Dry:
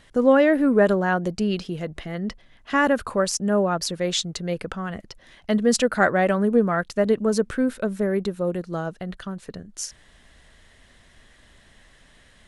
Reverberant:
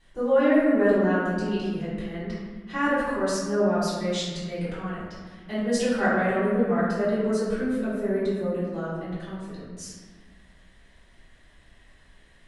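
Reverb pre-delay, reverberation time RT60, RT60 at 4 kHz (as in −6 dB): 3 ms, 1.5 s, 0.90 s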